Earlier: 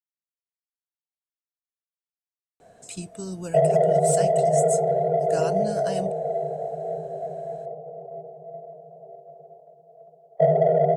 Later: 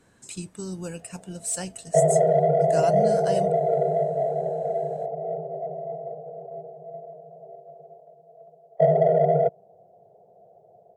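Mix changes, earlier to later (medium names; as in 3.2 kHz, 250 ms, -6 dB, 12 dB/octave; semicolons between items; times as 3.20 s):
speech: entry -2.60 s; background: entry -1.60 s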